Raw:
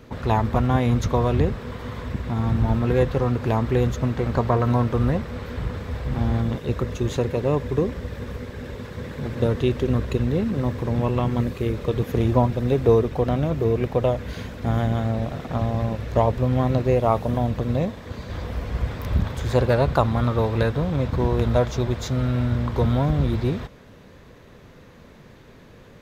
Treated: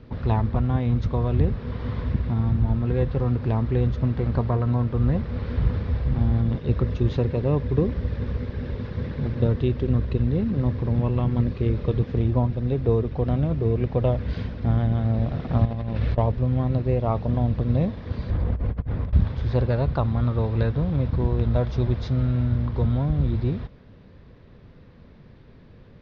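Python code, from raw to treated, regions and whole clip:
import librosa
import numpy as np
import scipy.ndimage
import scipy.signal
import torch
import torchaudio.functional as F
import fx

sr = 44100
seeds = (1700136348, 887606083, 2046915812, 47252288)

y = fx.chain(x, sr, fx.lowpass(hz=3700.0, slope=12),
    fx.high_shelf(hz=2300.0, db=10.5),
    fx.over_compress(threshold_db=-30.0, ratio=-1.0), at=(15.65, 16.18))
y = fx.chain(y, sr, fx.lowpass(hz=1300.0, slope=6),
    fx.over_compress(threshold_db=-30.0, ratio=-0.5), at=(18.3, 19.13))
y = scipy.signal.sosfilt(scipy.signal.butter(8, 5300.0, 'lowpass', fs=sr, output='sos'), y)
y = fx.low_shelf(y, sr, hz=270.0, db=11.0)
y = fx.rider(y, sr, range_db=4, speed_s=0.5)
y = y * 10.0 ** (-7.5 / 20.0)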